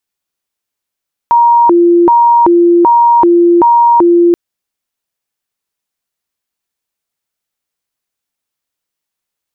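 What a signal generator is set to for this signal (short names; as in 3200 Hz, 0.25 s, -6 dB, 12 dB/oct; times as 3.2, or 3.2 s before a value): siren hi-lo 345–943 Hz 1.3/s sine -3.5 dBFS 3.03 s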